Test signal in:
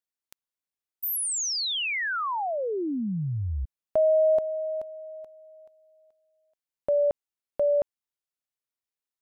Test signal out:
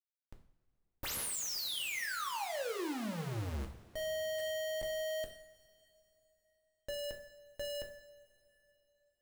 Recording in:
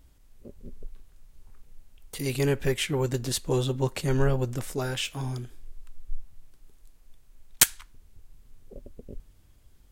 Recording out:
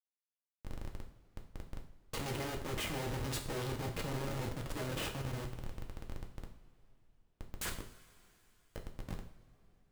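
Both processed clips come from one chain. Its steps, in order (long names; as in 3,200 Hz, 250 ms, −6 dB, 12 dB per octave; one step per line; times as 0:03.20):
output level in coarse steps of 14 dB
comparator with hysteresis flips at −41 dBFS
coupled-rooms reverb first 0.5 s, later 3.6 s, from −20 dB, DRR 2 dB
level −3 dB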